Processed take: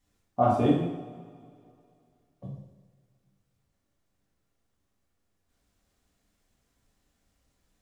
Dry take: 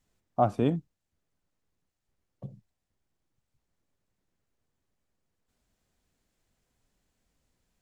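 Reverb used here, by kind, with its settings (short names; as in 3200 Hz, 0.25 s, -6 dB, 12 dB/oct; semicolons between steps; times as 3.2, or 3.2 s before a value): two-slope reverb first 0.83 s, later 2.6 s, from -18 dB, DRR -5.5 dB; gain -3 dB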